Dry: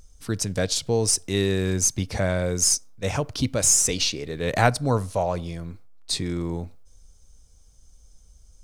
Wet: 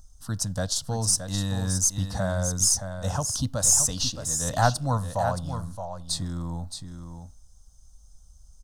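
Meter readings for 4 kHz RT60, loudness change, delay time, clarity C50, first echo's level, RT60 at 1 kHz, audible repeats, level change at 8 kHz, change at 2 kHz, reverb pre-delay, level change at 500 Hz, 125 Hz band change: none, -2.0 dB, 0.621 s, none, -8.5 dB, none, 1, -0.5 dB, -6.0 dB, none, -6.5 dB, -0.5 dB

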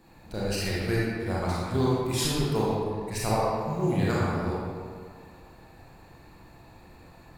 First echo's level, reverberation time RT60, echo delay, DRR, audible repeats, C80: none, 1.9 s, none, -7.5 dB, none, -1.0 dB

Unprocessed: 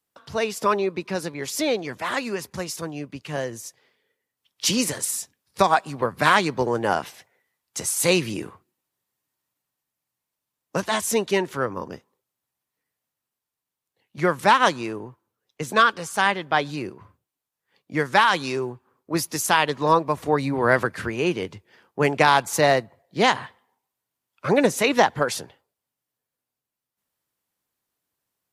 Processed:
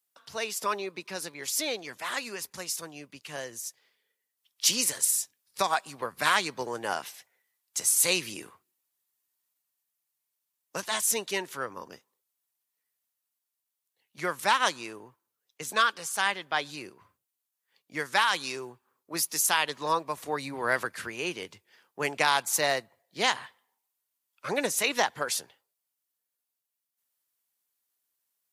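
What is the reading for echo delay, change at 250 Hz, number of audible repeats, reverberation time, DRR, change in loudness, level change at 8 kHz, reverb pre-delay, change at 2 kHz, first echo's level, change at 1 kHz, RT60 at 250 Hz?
none, -13.5 dB, none, none, none, -5.5 dB, +1.0 dB, none, -5.5 dB, none, -8.0 dB, none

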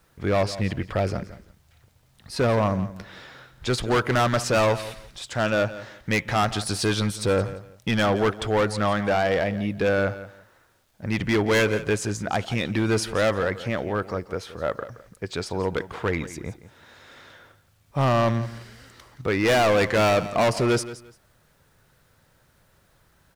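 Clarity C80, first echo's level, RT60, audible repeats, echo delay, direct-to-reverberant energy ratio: none, -15.0 dB, none, 2, 0.172 s, none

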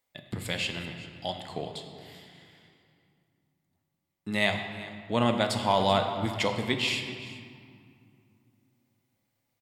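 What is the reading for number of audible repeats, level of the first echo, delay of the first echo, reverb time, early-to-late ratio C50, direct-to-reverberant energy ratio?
1, -18.0 dB, 0.388 s, 2.2 s, 6.0 dB, 4.0 dB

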